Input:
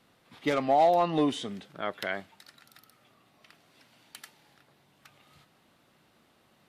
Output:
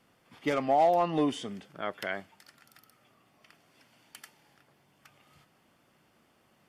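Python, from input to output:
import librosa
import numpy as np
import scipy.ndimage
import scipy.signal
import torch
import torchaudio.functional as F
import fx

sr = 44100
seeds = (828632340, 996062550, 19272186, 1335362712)

y = fx.notch(x, sr, hz=3900.0, q=5.1)
y = F.gain(torch.from_numpy(y), -1.5).numpy()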